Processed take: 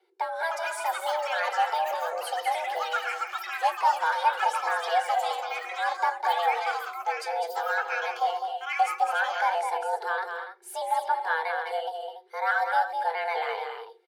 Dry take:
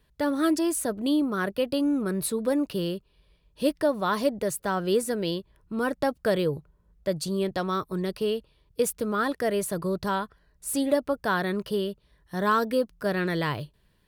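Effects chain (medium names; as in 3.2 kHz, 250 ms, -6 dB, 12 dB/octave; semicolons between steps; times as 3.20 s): pitch shift switched off and on -2 st, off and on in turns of 212 ms; low-pass 2.8 kHz 6 dB/octave; peaking EQ 210 Hz -9 dB 0.45 oct; hum notches 60/120/180 Hz; frequency shift +330 Hz; comb of notches 640 Hz; loudspeakers at several distances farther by 70 m -6 dB, 98 m -10 dB; ever faster or slower copies 376 ms, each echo +7 st, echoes 3, each echo -6 dB; reverberation RT60 0.25 s, pre-delay 8 ms, DRR 11.5 dB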